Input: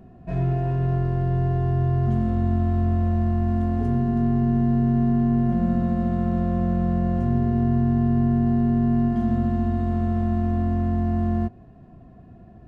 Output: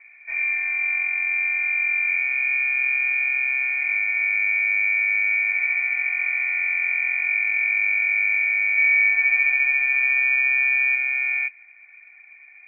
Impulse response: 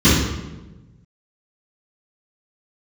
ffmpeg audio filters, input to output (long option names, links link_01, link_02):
-filter_complex "[0:a]asettb=1/sr,asplit=3[link_01][link_02][link_03];[link_01]atrim=end=8.764[link_04];[link_02]atrim=start=8.76:end=10.95,asetpts=PTS-STARTPTS,afade=type=in:duration=0.004:curve=qsin,afade=type=out:start_time=2.186:duration=0.004:curve=qsin,asplit=2[link_05][link_06];[link_06]adelay=13,volume=-2dB[link_07];[link_05][link_07]amix=inputs=2:normalize=0,atrim=end_sample=96579[link_08];[link_03]atrim=start=10.946[link_09];[link_04][link_08]acrossfade=duration=0.004:curve1=hsin:curve2=qsin[link_10];[link_10][link_09]acrossfade=duration=0.004:curve1=qsin:curve2=hsin,lowpass=frequency=2100:width_type=q:width=0.5098,lowpass=frequency=2100:width_type=q:width=0.6013,lowpass=frequency=2100:width_type=q:width=0.9,lowpass=frequency=2100:width_type=q:width=2.563,afreqshift=-2500,volume=-1.5dB"